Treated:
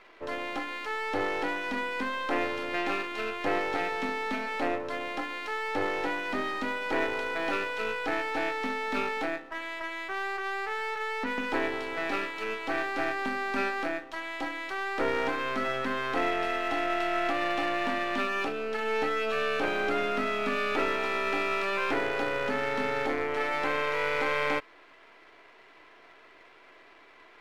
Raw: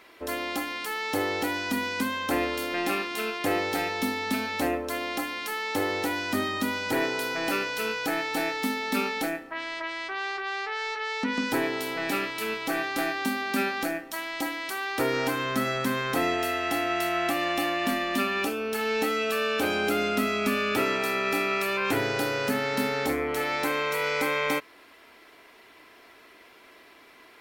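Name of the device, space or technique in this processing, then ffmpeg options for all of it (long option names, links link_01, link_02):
crystal radio: -af "highpass=340,lowpass=2800,aeval=exprs='if(lt(val(0),0),0.447*val(0),val(0))':channel_layout=same,volume=2dB"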